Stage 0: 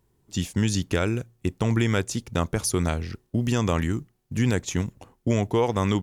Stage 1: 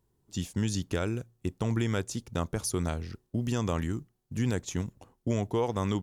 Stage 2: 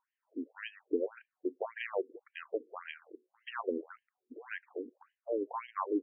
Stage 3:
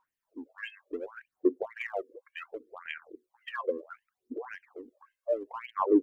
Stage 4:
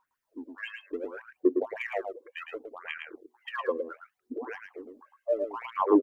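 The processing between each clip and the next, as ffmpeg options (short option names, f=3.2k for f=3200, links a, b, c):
-af "equalizer=f=2.2k:t=o:w=0.84:g=-4,volume=-6dB"
-af "afftfilt=real='re*between(b*sr/1024,340*pow(2300/340,0.5+0.5*sin(2*PI*1.8*pts/sr))/1.41,340*pow(2300/340,0.5+0.5*sin(2*PI*1.8*pts/sr))*1.41)':imag='im*between(b*sr/1024,340*pow(2300/340,0.5+0.5*sin(2*PI*1.8*pts/sr))/1.41,340*pow(2300/340,0.5+0.5*sin(2*PI*1.8*pts/sr))*1.41)':win_size=1024:overlap=0.75,volume=3dB"
-filter_complex "[0:a]asplit=2[a][b];[b]asoftclip=type=tanh:threshold=-34.5dB,volume=-11.5dB[c];[a][c]amix=inputs=2:normalize=0,aphaser=in_gain=1:out_gain=1:delay=1.9:decay=0.74:speed=0.68:type=sinusoidal,volume=-2dB"
-af "aecho=1:1:110:0.531,volume=1.5dB"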